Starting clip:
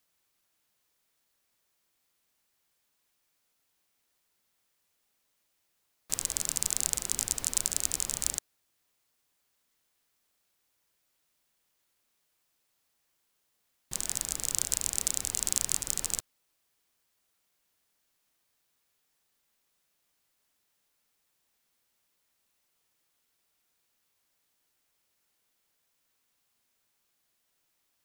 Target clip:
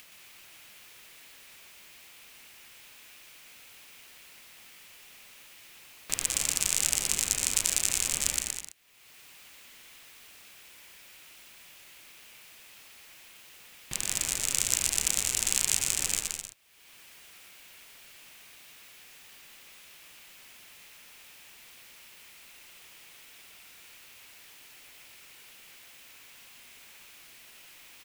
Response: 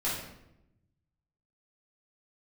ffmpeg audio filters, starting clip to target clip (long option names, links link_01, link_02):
-filter_complex "[0:a]equalizer=frequency=2500:width_type=o:width=1:gain=10,acompressor=mode=upward:threshold=-37dB:ratio=2.5,asplit=2[link_01][link_02];[link_02]aecho=0:1:120|204|262.8|304|332.8:0.631|0.398|0.251|0.158|0.1[link_03];[link_01][link_03]amix=inputs=2:normalize=0"